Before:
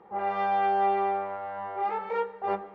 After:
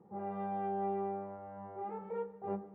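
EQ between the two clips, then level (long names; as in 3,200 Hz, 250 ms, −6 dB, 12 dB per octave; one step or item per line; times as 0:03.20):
resonant band-pass 150 Hz, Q 1.6
+5.0 dB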